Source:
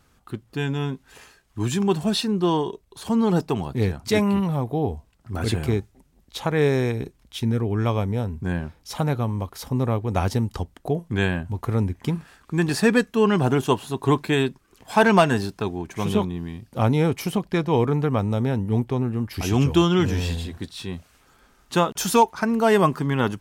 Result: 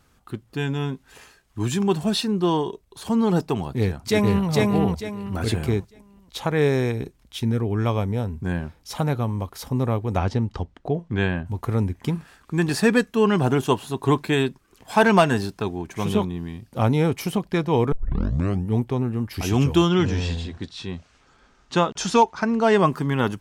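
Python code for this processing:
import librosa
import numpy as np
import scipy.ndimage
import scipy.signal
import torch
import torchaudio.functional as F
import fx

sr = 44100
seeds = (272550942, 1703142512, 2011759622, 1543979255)

y = fx.echo_throw(x, sr, start_s=3.78, length_s=0.71, ms=450, feedback_pct=30, wet_db=-1.0)
y = fx.air_absorb(y, sr, metres=120.0, at=(10.16, 11.45), fade=0.02)
y = fx.lowpass(y, sr, hz=7000.0, slope=24, at=(19.89, 22.87))
y = fx.edit(y, sr, fx.tape_start(start_s=17.92, length_s=0.76), tone=tone)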